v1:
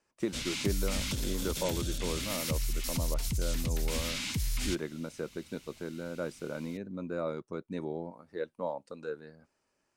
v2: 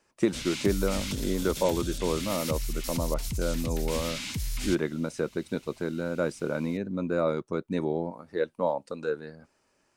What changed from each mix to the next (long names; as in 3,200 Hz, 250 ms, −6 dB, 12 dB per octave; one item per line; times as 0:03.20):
speech +8.0 dB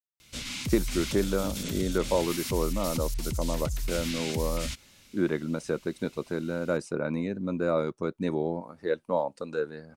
speech: entry +0.50 s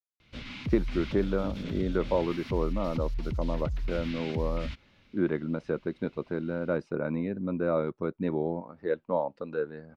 master: add high-frequency loss of the air 330 metres